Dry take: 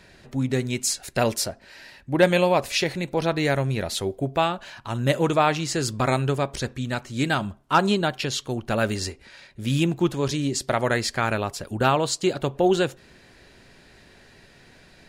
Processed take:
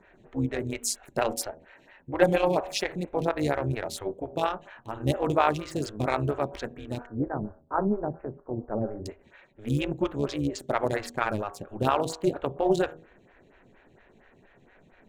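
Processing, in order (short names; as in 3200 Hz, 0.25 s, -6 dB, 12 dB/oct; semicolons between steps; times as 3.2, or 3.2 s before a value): Wiener smoothing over 9 samples; 7.06–9.06 Gaussian blur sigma 8.2 samples; de-hum 80.36 Hz, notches 21; AM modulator 210 Hz, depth 50%; photocell phaser 4.3 Hz; gain +1.5 dB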